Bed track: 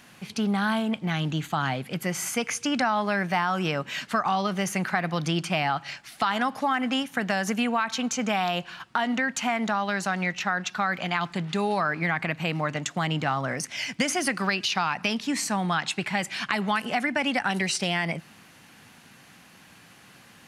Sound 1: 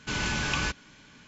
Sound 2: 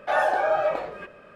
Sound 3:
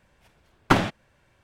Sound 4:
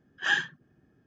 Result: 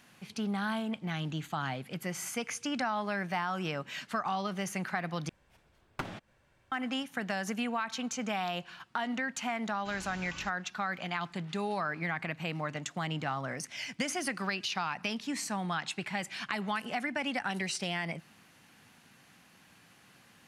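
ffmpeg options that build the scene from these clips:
-filter_complex "[0:a]volume=0.398[s0];[3:a]acompressor=threshold=0.0282:ratio=10:attack=28:release=207:knee=1:detection=rms[s1];[s0]asplit=2[s2][s3];[s2]atrim=end=5.294[s4];[s1]atrim=end=1.43,asetpts=PTS-STARTPTS,volume=0.562[s5];[s3]atrim=start=6.716[s6];[1:a]atrim=end=1.27,asetpts=PTS-STARTPTS,volume=0.126,afade=t=in:d=0.004:c=hsin,afade=t=out:st=1.266:d=0.004:c=hsin,adelay=431298S[s7];[s4][s5]acrossfade=d=0.004:c1=hsin:c2=hsin[s8];[s8][s6]acrossfade=d=0.004:c1=hsin:c2=hsin[s9];[s9][s7]amix=inputs=2:normalize=0"

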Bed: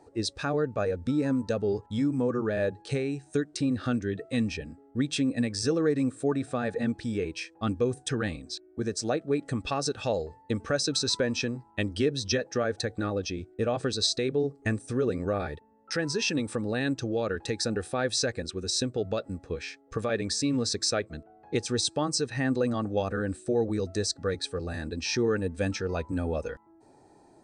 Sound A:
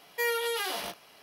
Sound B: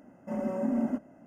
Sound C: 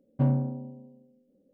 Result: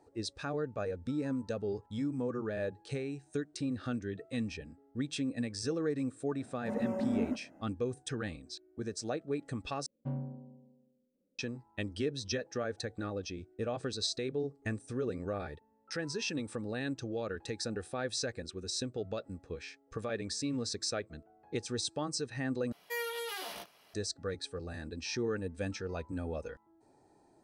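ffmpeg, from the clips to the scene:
-filter_complex "[0:a]volume=0.398,asplit=3[s0][s1][s2];[s0]atrim=end=9.864[s3];[3:a]atrim=end=1.53,asetpts=PTS-STARTPTS,volume=0.211[s4];[s1]atrim=start=11.386:end=22.724[s5];[1:a]atrim=end=1.22,asetpts=PTS-STARTPTS,volume=0.398[s6];[s2]atrim=start=23.936[s7];[2:a]atrim=end=1.26,asetpts=PTS-STARTPTS,volume=0.631,afade=t=in:d=0.004:c=hsin,afade=t=out:st=1.256:d=0.004:c=hsin,adelay=6380[s8];[s3][s4]acrossfade=d=0.004:c1=hsin:c2=hsin[s9];[s9][s5]acrossfade=d=0.004:c1=hsin:c2=hsin[s10];[s10][s6]acrossfade=d=0.004:c1=hsin:c2=hsin[s11];[s11][s7]acrossfade=d=0.004:c1=hsin:c2=hsin[s12];[s12][s8]amix=inputs=2:normalize=0"

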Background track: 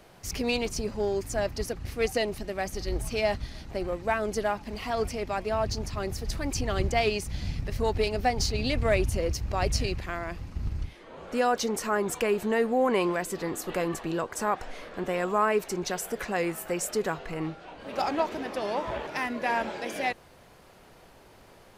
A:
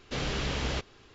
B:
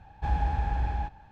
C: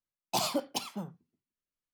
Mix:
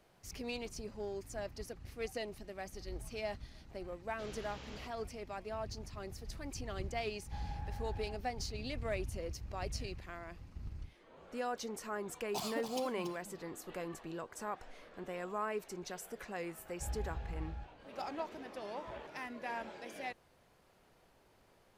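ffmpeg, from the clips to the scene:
-filter_complex "[2:a]asplit=2[s0][s1];[0:a]volume=0.211[s2];[3:a]aecho=1:1:282:0.376[s3];[s1]equalizer=f=1000:t=o:w=1.4:g=-7.5[s4];[1:a]atrim=end=1.14,asetpts=PTS-STARTPTS,volume=0.126,afade=t=in:d=0.004:c=hsin,afade=t=out:st=1.136:d=0.004:c=hsin,adelay=4070[s5];[s0]atrim=end=1.31,asetpts=PTS-STARTPTS,volume=0.158,afade=t=in:d=0.004:c=hsin,afade=t=out:st=1.306:d=0.004:c=hsin,adelay=7090[s6];[s3]atrim=end=1.93,asetpts=PTS-STARTPTS,volume=0.299,afade=t=in:d=0.004:c=hsin,afade=t=out:st=1.926:d=0.004:c=hsin,adelay=12010[s7];[s4]atrim=end=1.31,asetpts=PTS-STARTPTS,volume=0.211,afade=t=in:d=0.004:c=hsin,afade=t=out:st=1.306:d=0.004:c=hsin,adelay=16580[s8];[s2][s5][s6][s7][s8]amix=inputs=5:normalize=0"

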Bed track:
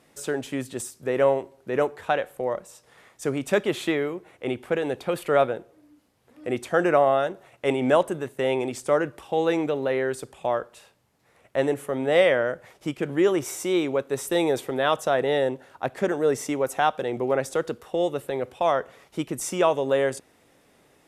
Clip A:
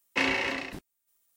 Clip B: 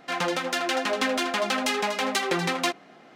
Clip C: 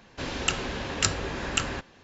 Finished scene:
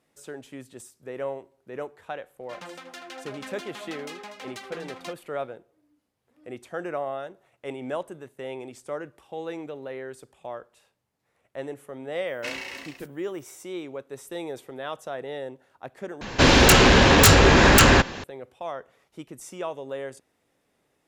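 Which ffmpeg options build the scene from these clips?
-filter_complex "[0:a]volume=0.266[s0];[1:a]aemphasis=mode=production:type=75kf[s1];[3:a]aeval=exprs='0.631*sin(PI/2*10*val(0)/0.631)':c=same[s2];[s0]asplit=2[s3][s4];[s3]atrim=end=16.214[s5];[s2]atrim=end=2.03,asetpts=PTS-STARTPTS,volume=0.596[s6];[s4]atrim=start=18.236[s7];[2:a]atrim=end=3.15,asetpts=PTS-STARTPTS,volume=0.178,afade=t=in:d=0.004:c=hsin,afade=t=out:st=3.146:d=0.004:c=hsin,adelay=2410[s8];[s1]atrim=end=1.36,asetpts=PTS-STARTPTS,volume=0.282,afade=t=in:d=0.004:c=hsin,afade=t=out:st=1.356:d=0.004:c=hsin,adelay=12270[s9];[s5][s6]acrossfade=d=0.004:c1=hsin:c2=hsin[s10];[s10][s7]acrossfade=d=0.004:c1=hsin:c2=hsin[s11];[s11][s8][s9]amix=inputs=3:normalize=0"

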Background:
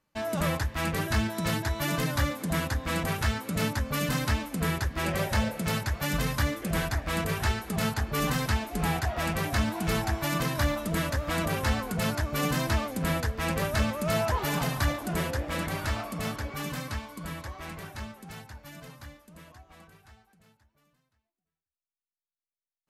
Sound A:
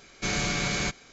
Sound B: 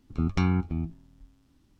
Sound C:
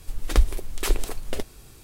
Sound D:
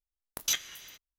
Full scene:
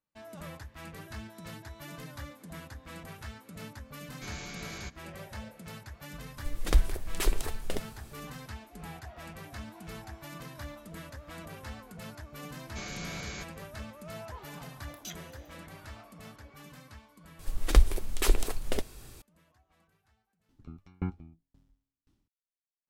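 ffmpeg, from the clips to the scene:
-filter_complex "[1:a]asplit=2[s0][s1];[3:a]asplit=2[s2][s3];[0:a]volume=0.158[s4];[2:a]aeval=exprs='val(0)*pow(10,-38*if(lt(mod(1.9*n/s,1),2*abs(1.9)/1000),1-mod(1.9*n/s,1)/(2*abs(1.9)/1000),(mod(1.9*n/s,1)-2*abs(1.9)/1000)/(1-2*abs(1.9)/1000))/20)':c=same[s5];[s0]atrim=end=1.12,asetpts=PTS-STARTPTS,volume=0.188,afade=t=in:d=0.004:c=hsin,afade=t=out:st=1.116:d=0.004:c=hsin,adelay=3990[s6];[s2]atrim=end=1.83,asetpts=PTS-STARTPTS,volume=0.596,afade=t=in:d=0.004:c=hsin,afade=t=out:st=1.826:d=0.004:c=hsin,adelay=6370[s7];[s1]atrim=end=1.12,asetpts=PTS-STARTPTS,volume=0.237,afade=t=in:d=0.004:c=hsin,afade=t=out:st=1.116:d=0.004:c=hsin,adelay=12530[s8];[4:a]atrim=end=1.18,asetpts=PTS-STARTPTS,volume=0.178,afade=t=in:d=0.004:c=hsin,afade=t=out:st=1.176:d=0.004:c=hsin,adelay=14570[s9];[s3]atrim=end=1.83,asetpts=PTS-STARTPTS,volume=0.841,afade=t=in:d=0.004:c=hsin,afade=t=out:st=1.826:d=0.004:c=hsin,adelay=17390[s10];[s5]atrim=end=1.79,asetpts=PTS-STARTPTS,volume=0.668,afade=t=in:d=0.004:c=hsin,afade=t=out:st=1.786:d=0.004:c=hsin,adelay=20490[s11];[s4][s6][s7][s8][s9][s10][s11]amix=inputs=7:normalize=0"

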